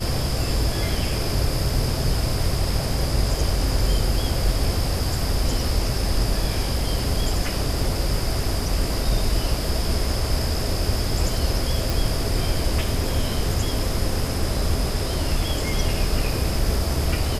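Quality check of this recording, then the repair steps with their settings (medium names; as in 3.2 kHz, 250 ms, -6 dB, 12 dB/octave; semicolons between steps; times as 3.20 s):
11.90 s: pop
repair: de-click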